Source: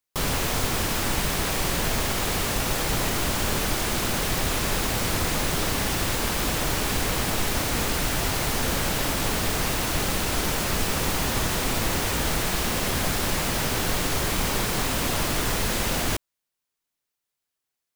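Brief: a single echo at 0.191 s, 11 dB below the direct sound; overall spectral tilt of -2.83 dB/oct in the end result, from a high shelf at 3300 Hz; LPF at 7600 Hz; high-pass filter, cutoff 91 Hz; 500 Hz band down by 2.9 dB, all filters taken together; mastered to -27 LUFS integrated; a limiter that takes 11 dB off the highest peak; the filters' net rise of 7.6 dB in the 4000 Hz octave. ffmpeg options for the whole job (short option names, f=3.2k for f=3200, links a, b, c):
-af "highpass=91,lowpass=7.6k,equalizer=f=500:t=o:g=-4,highshelf=f=3.3k:g=7.5,equalizer=f=4k:t=o:g=4.5,alimiter=limit=-21dB:level=0:latency=1,aecho=1:1:191:0.282,volume=0.5dB"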